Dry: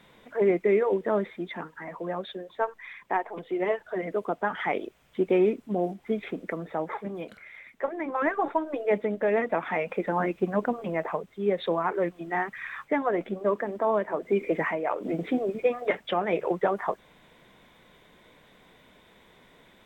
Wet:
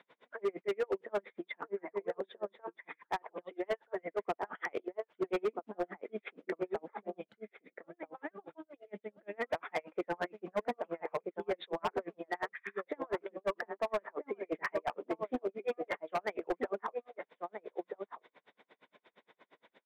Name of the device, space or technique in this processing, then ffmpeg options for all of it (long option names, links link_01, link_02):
helicopter radio: -filter_complex "[0:a]asplit=3[link_01][link_02][link_03];[link_01]afade=type=out:start_time=7.2:duration=0.02[link_04];[link_02]equalizer=frequency=125:width_type=o:width=1:gain=10,equalizer=frequency=250:width_type=o:width=1:gain=-8,equalizer=frequency=500:width_type=o:width=1:gain=-9,equalizer=frequency=1000:width_type=o:width=1:gain=-11,equalizer=frequency=2000:width_type=o:width=1:gain=-8,afade=type=in:start_time=7.2:duration=0.02,afade=type=out:start_time=9.33:duration=0.02[link_05];[link_03]afade=type=in:start_time=9.33:duration=0.02[link_06];[link_04][link_05][link_06]amix=inputs=3:normalize=0,highpass=350,lowpass=2900,asplit=2[link_07][link_08];[link_08]adelay=1283,volume=-7dB,highshelf=frequency=4000:gain=-28.9[link_09];[link_07][link_09]amix=inputs=2:normalize=0,aeval=exprs='val(0)*pow(10,-40*(0.5-0.5*cos(2*PI*8.6*n/s))/20)':channel_layout=same,asoftclip=type=hard:threshold=-27dB"